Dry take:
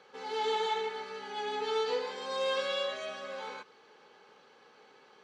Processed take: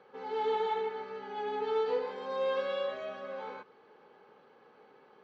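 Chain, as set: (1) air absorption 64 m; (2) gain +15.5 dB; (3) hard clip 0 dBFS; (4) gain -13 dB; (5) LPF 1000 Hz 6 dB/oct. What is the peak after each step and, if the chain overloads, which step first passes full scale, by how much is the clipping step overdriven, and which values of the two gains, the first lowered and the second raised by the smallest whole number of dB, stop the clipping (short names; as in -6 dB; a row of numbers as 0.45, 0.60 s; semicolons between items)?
-21.0, -5.5, -5.5, -18.5, -21.5 dBFS; no overload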